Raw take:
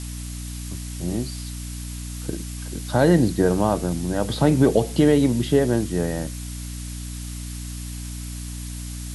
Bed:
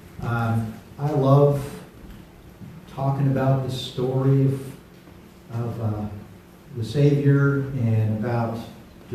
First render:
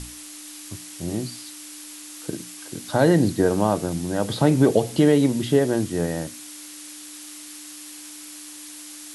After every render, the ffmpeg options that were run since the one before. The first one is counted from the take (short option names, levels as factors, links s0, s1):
-af "bandreject=f=60:t=h:w=6,bandreject=f=120:t=h:w=6,bandreject=f=180:t=h:w=6,bandreject=f=240:t=h:w=6"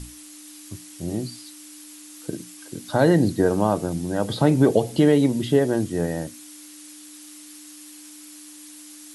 -af "afftdn=nr=6:nf=-40"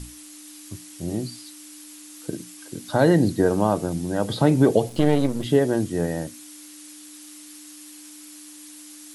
-filter_complex "[0:a]asplit=3[s0][s1][s2];[s0]afade=t=out:st=4.88:d=0.02[s3];[s1]aeval=exprs='if(lt(val(0),0),0.251*val(0),val(0))':c=same,afade=t=in:st=4.88:d=0.02,afade=t=out:st=5.44:d=0.02[s4];[s2]afade=t=in:st=5.44:d=0.02[s5];[s3][s4][s5]amix=inputs=3:normalize=0"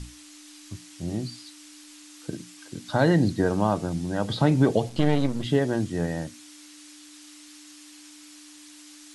-af "lowpass=6600,equalizer=f=430:w=0.96:g=-5.5"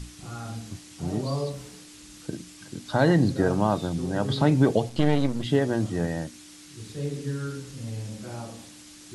-filter_complex "[1:a]volume=0.211[s0];[0:a][s0]amix=inputs=2:normalize=0"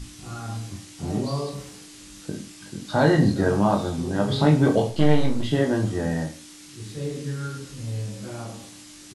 -filter_complex "[0:a]asplit=2[s0][s1];[s1]adelay=25,volume=0.299[s2];[s0][s2]amix=inputs=2:normalize=0,aecho=1:1:20|44|72.8|107.4|148.8:0.631|0.398|0.251|0.158|0.1"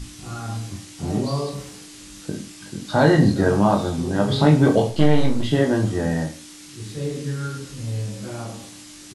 -af "volume=1.41,alimiter=limit=0.708:level=0:latency=1"